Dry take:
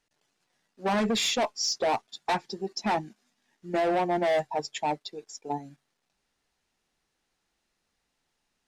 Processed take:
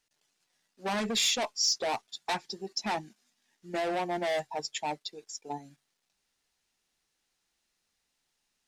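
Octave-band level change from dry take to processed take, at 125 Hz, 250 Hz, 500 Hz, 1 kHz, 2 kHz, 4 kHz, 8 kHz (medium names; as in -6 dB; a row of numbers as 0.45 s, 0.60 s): -6.5 dB, -6.5 dB, -6.0 dB, -5.5 dB, -2.0 dB, +1.0 dB, +2.0 dB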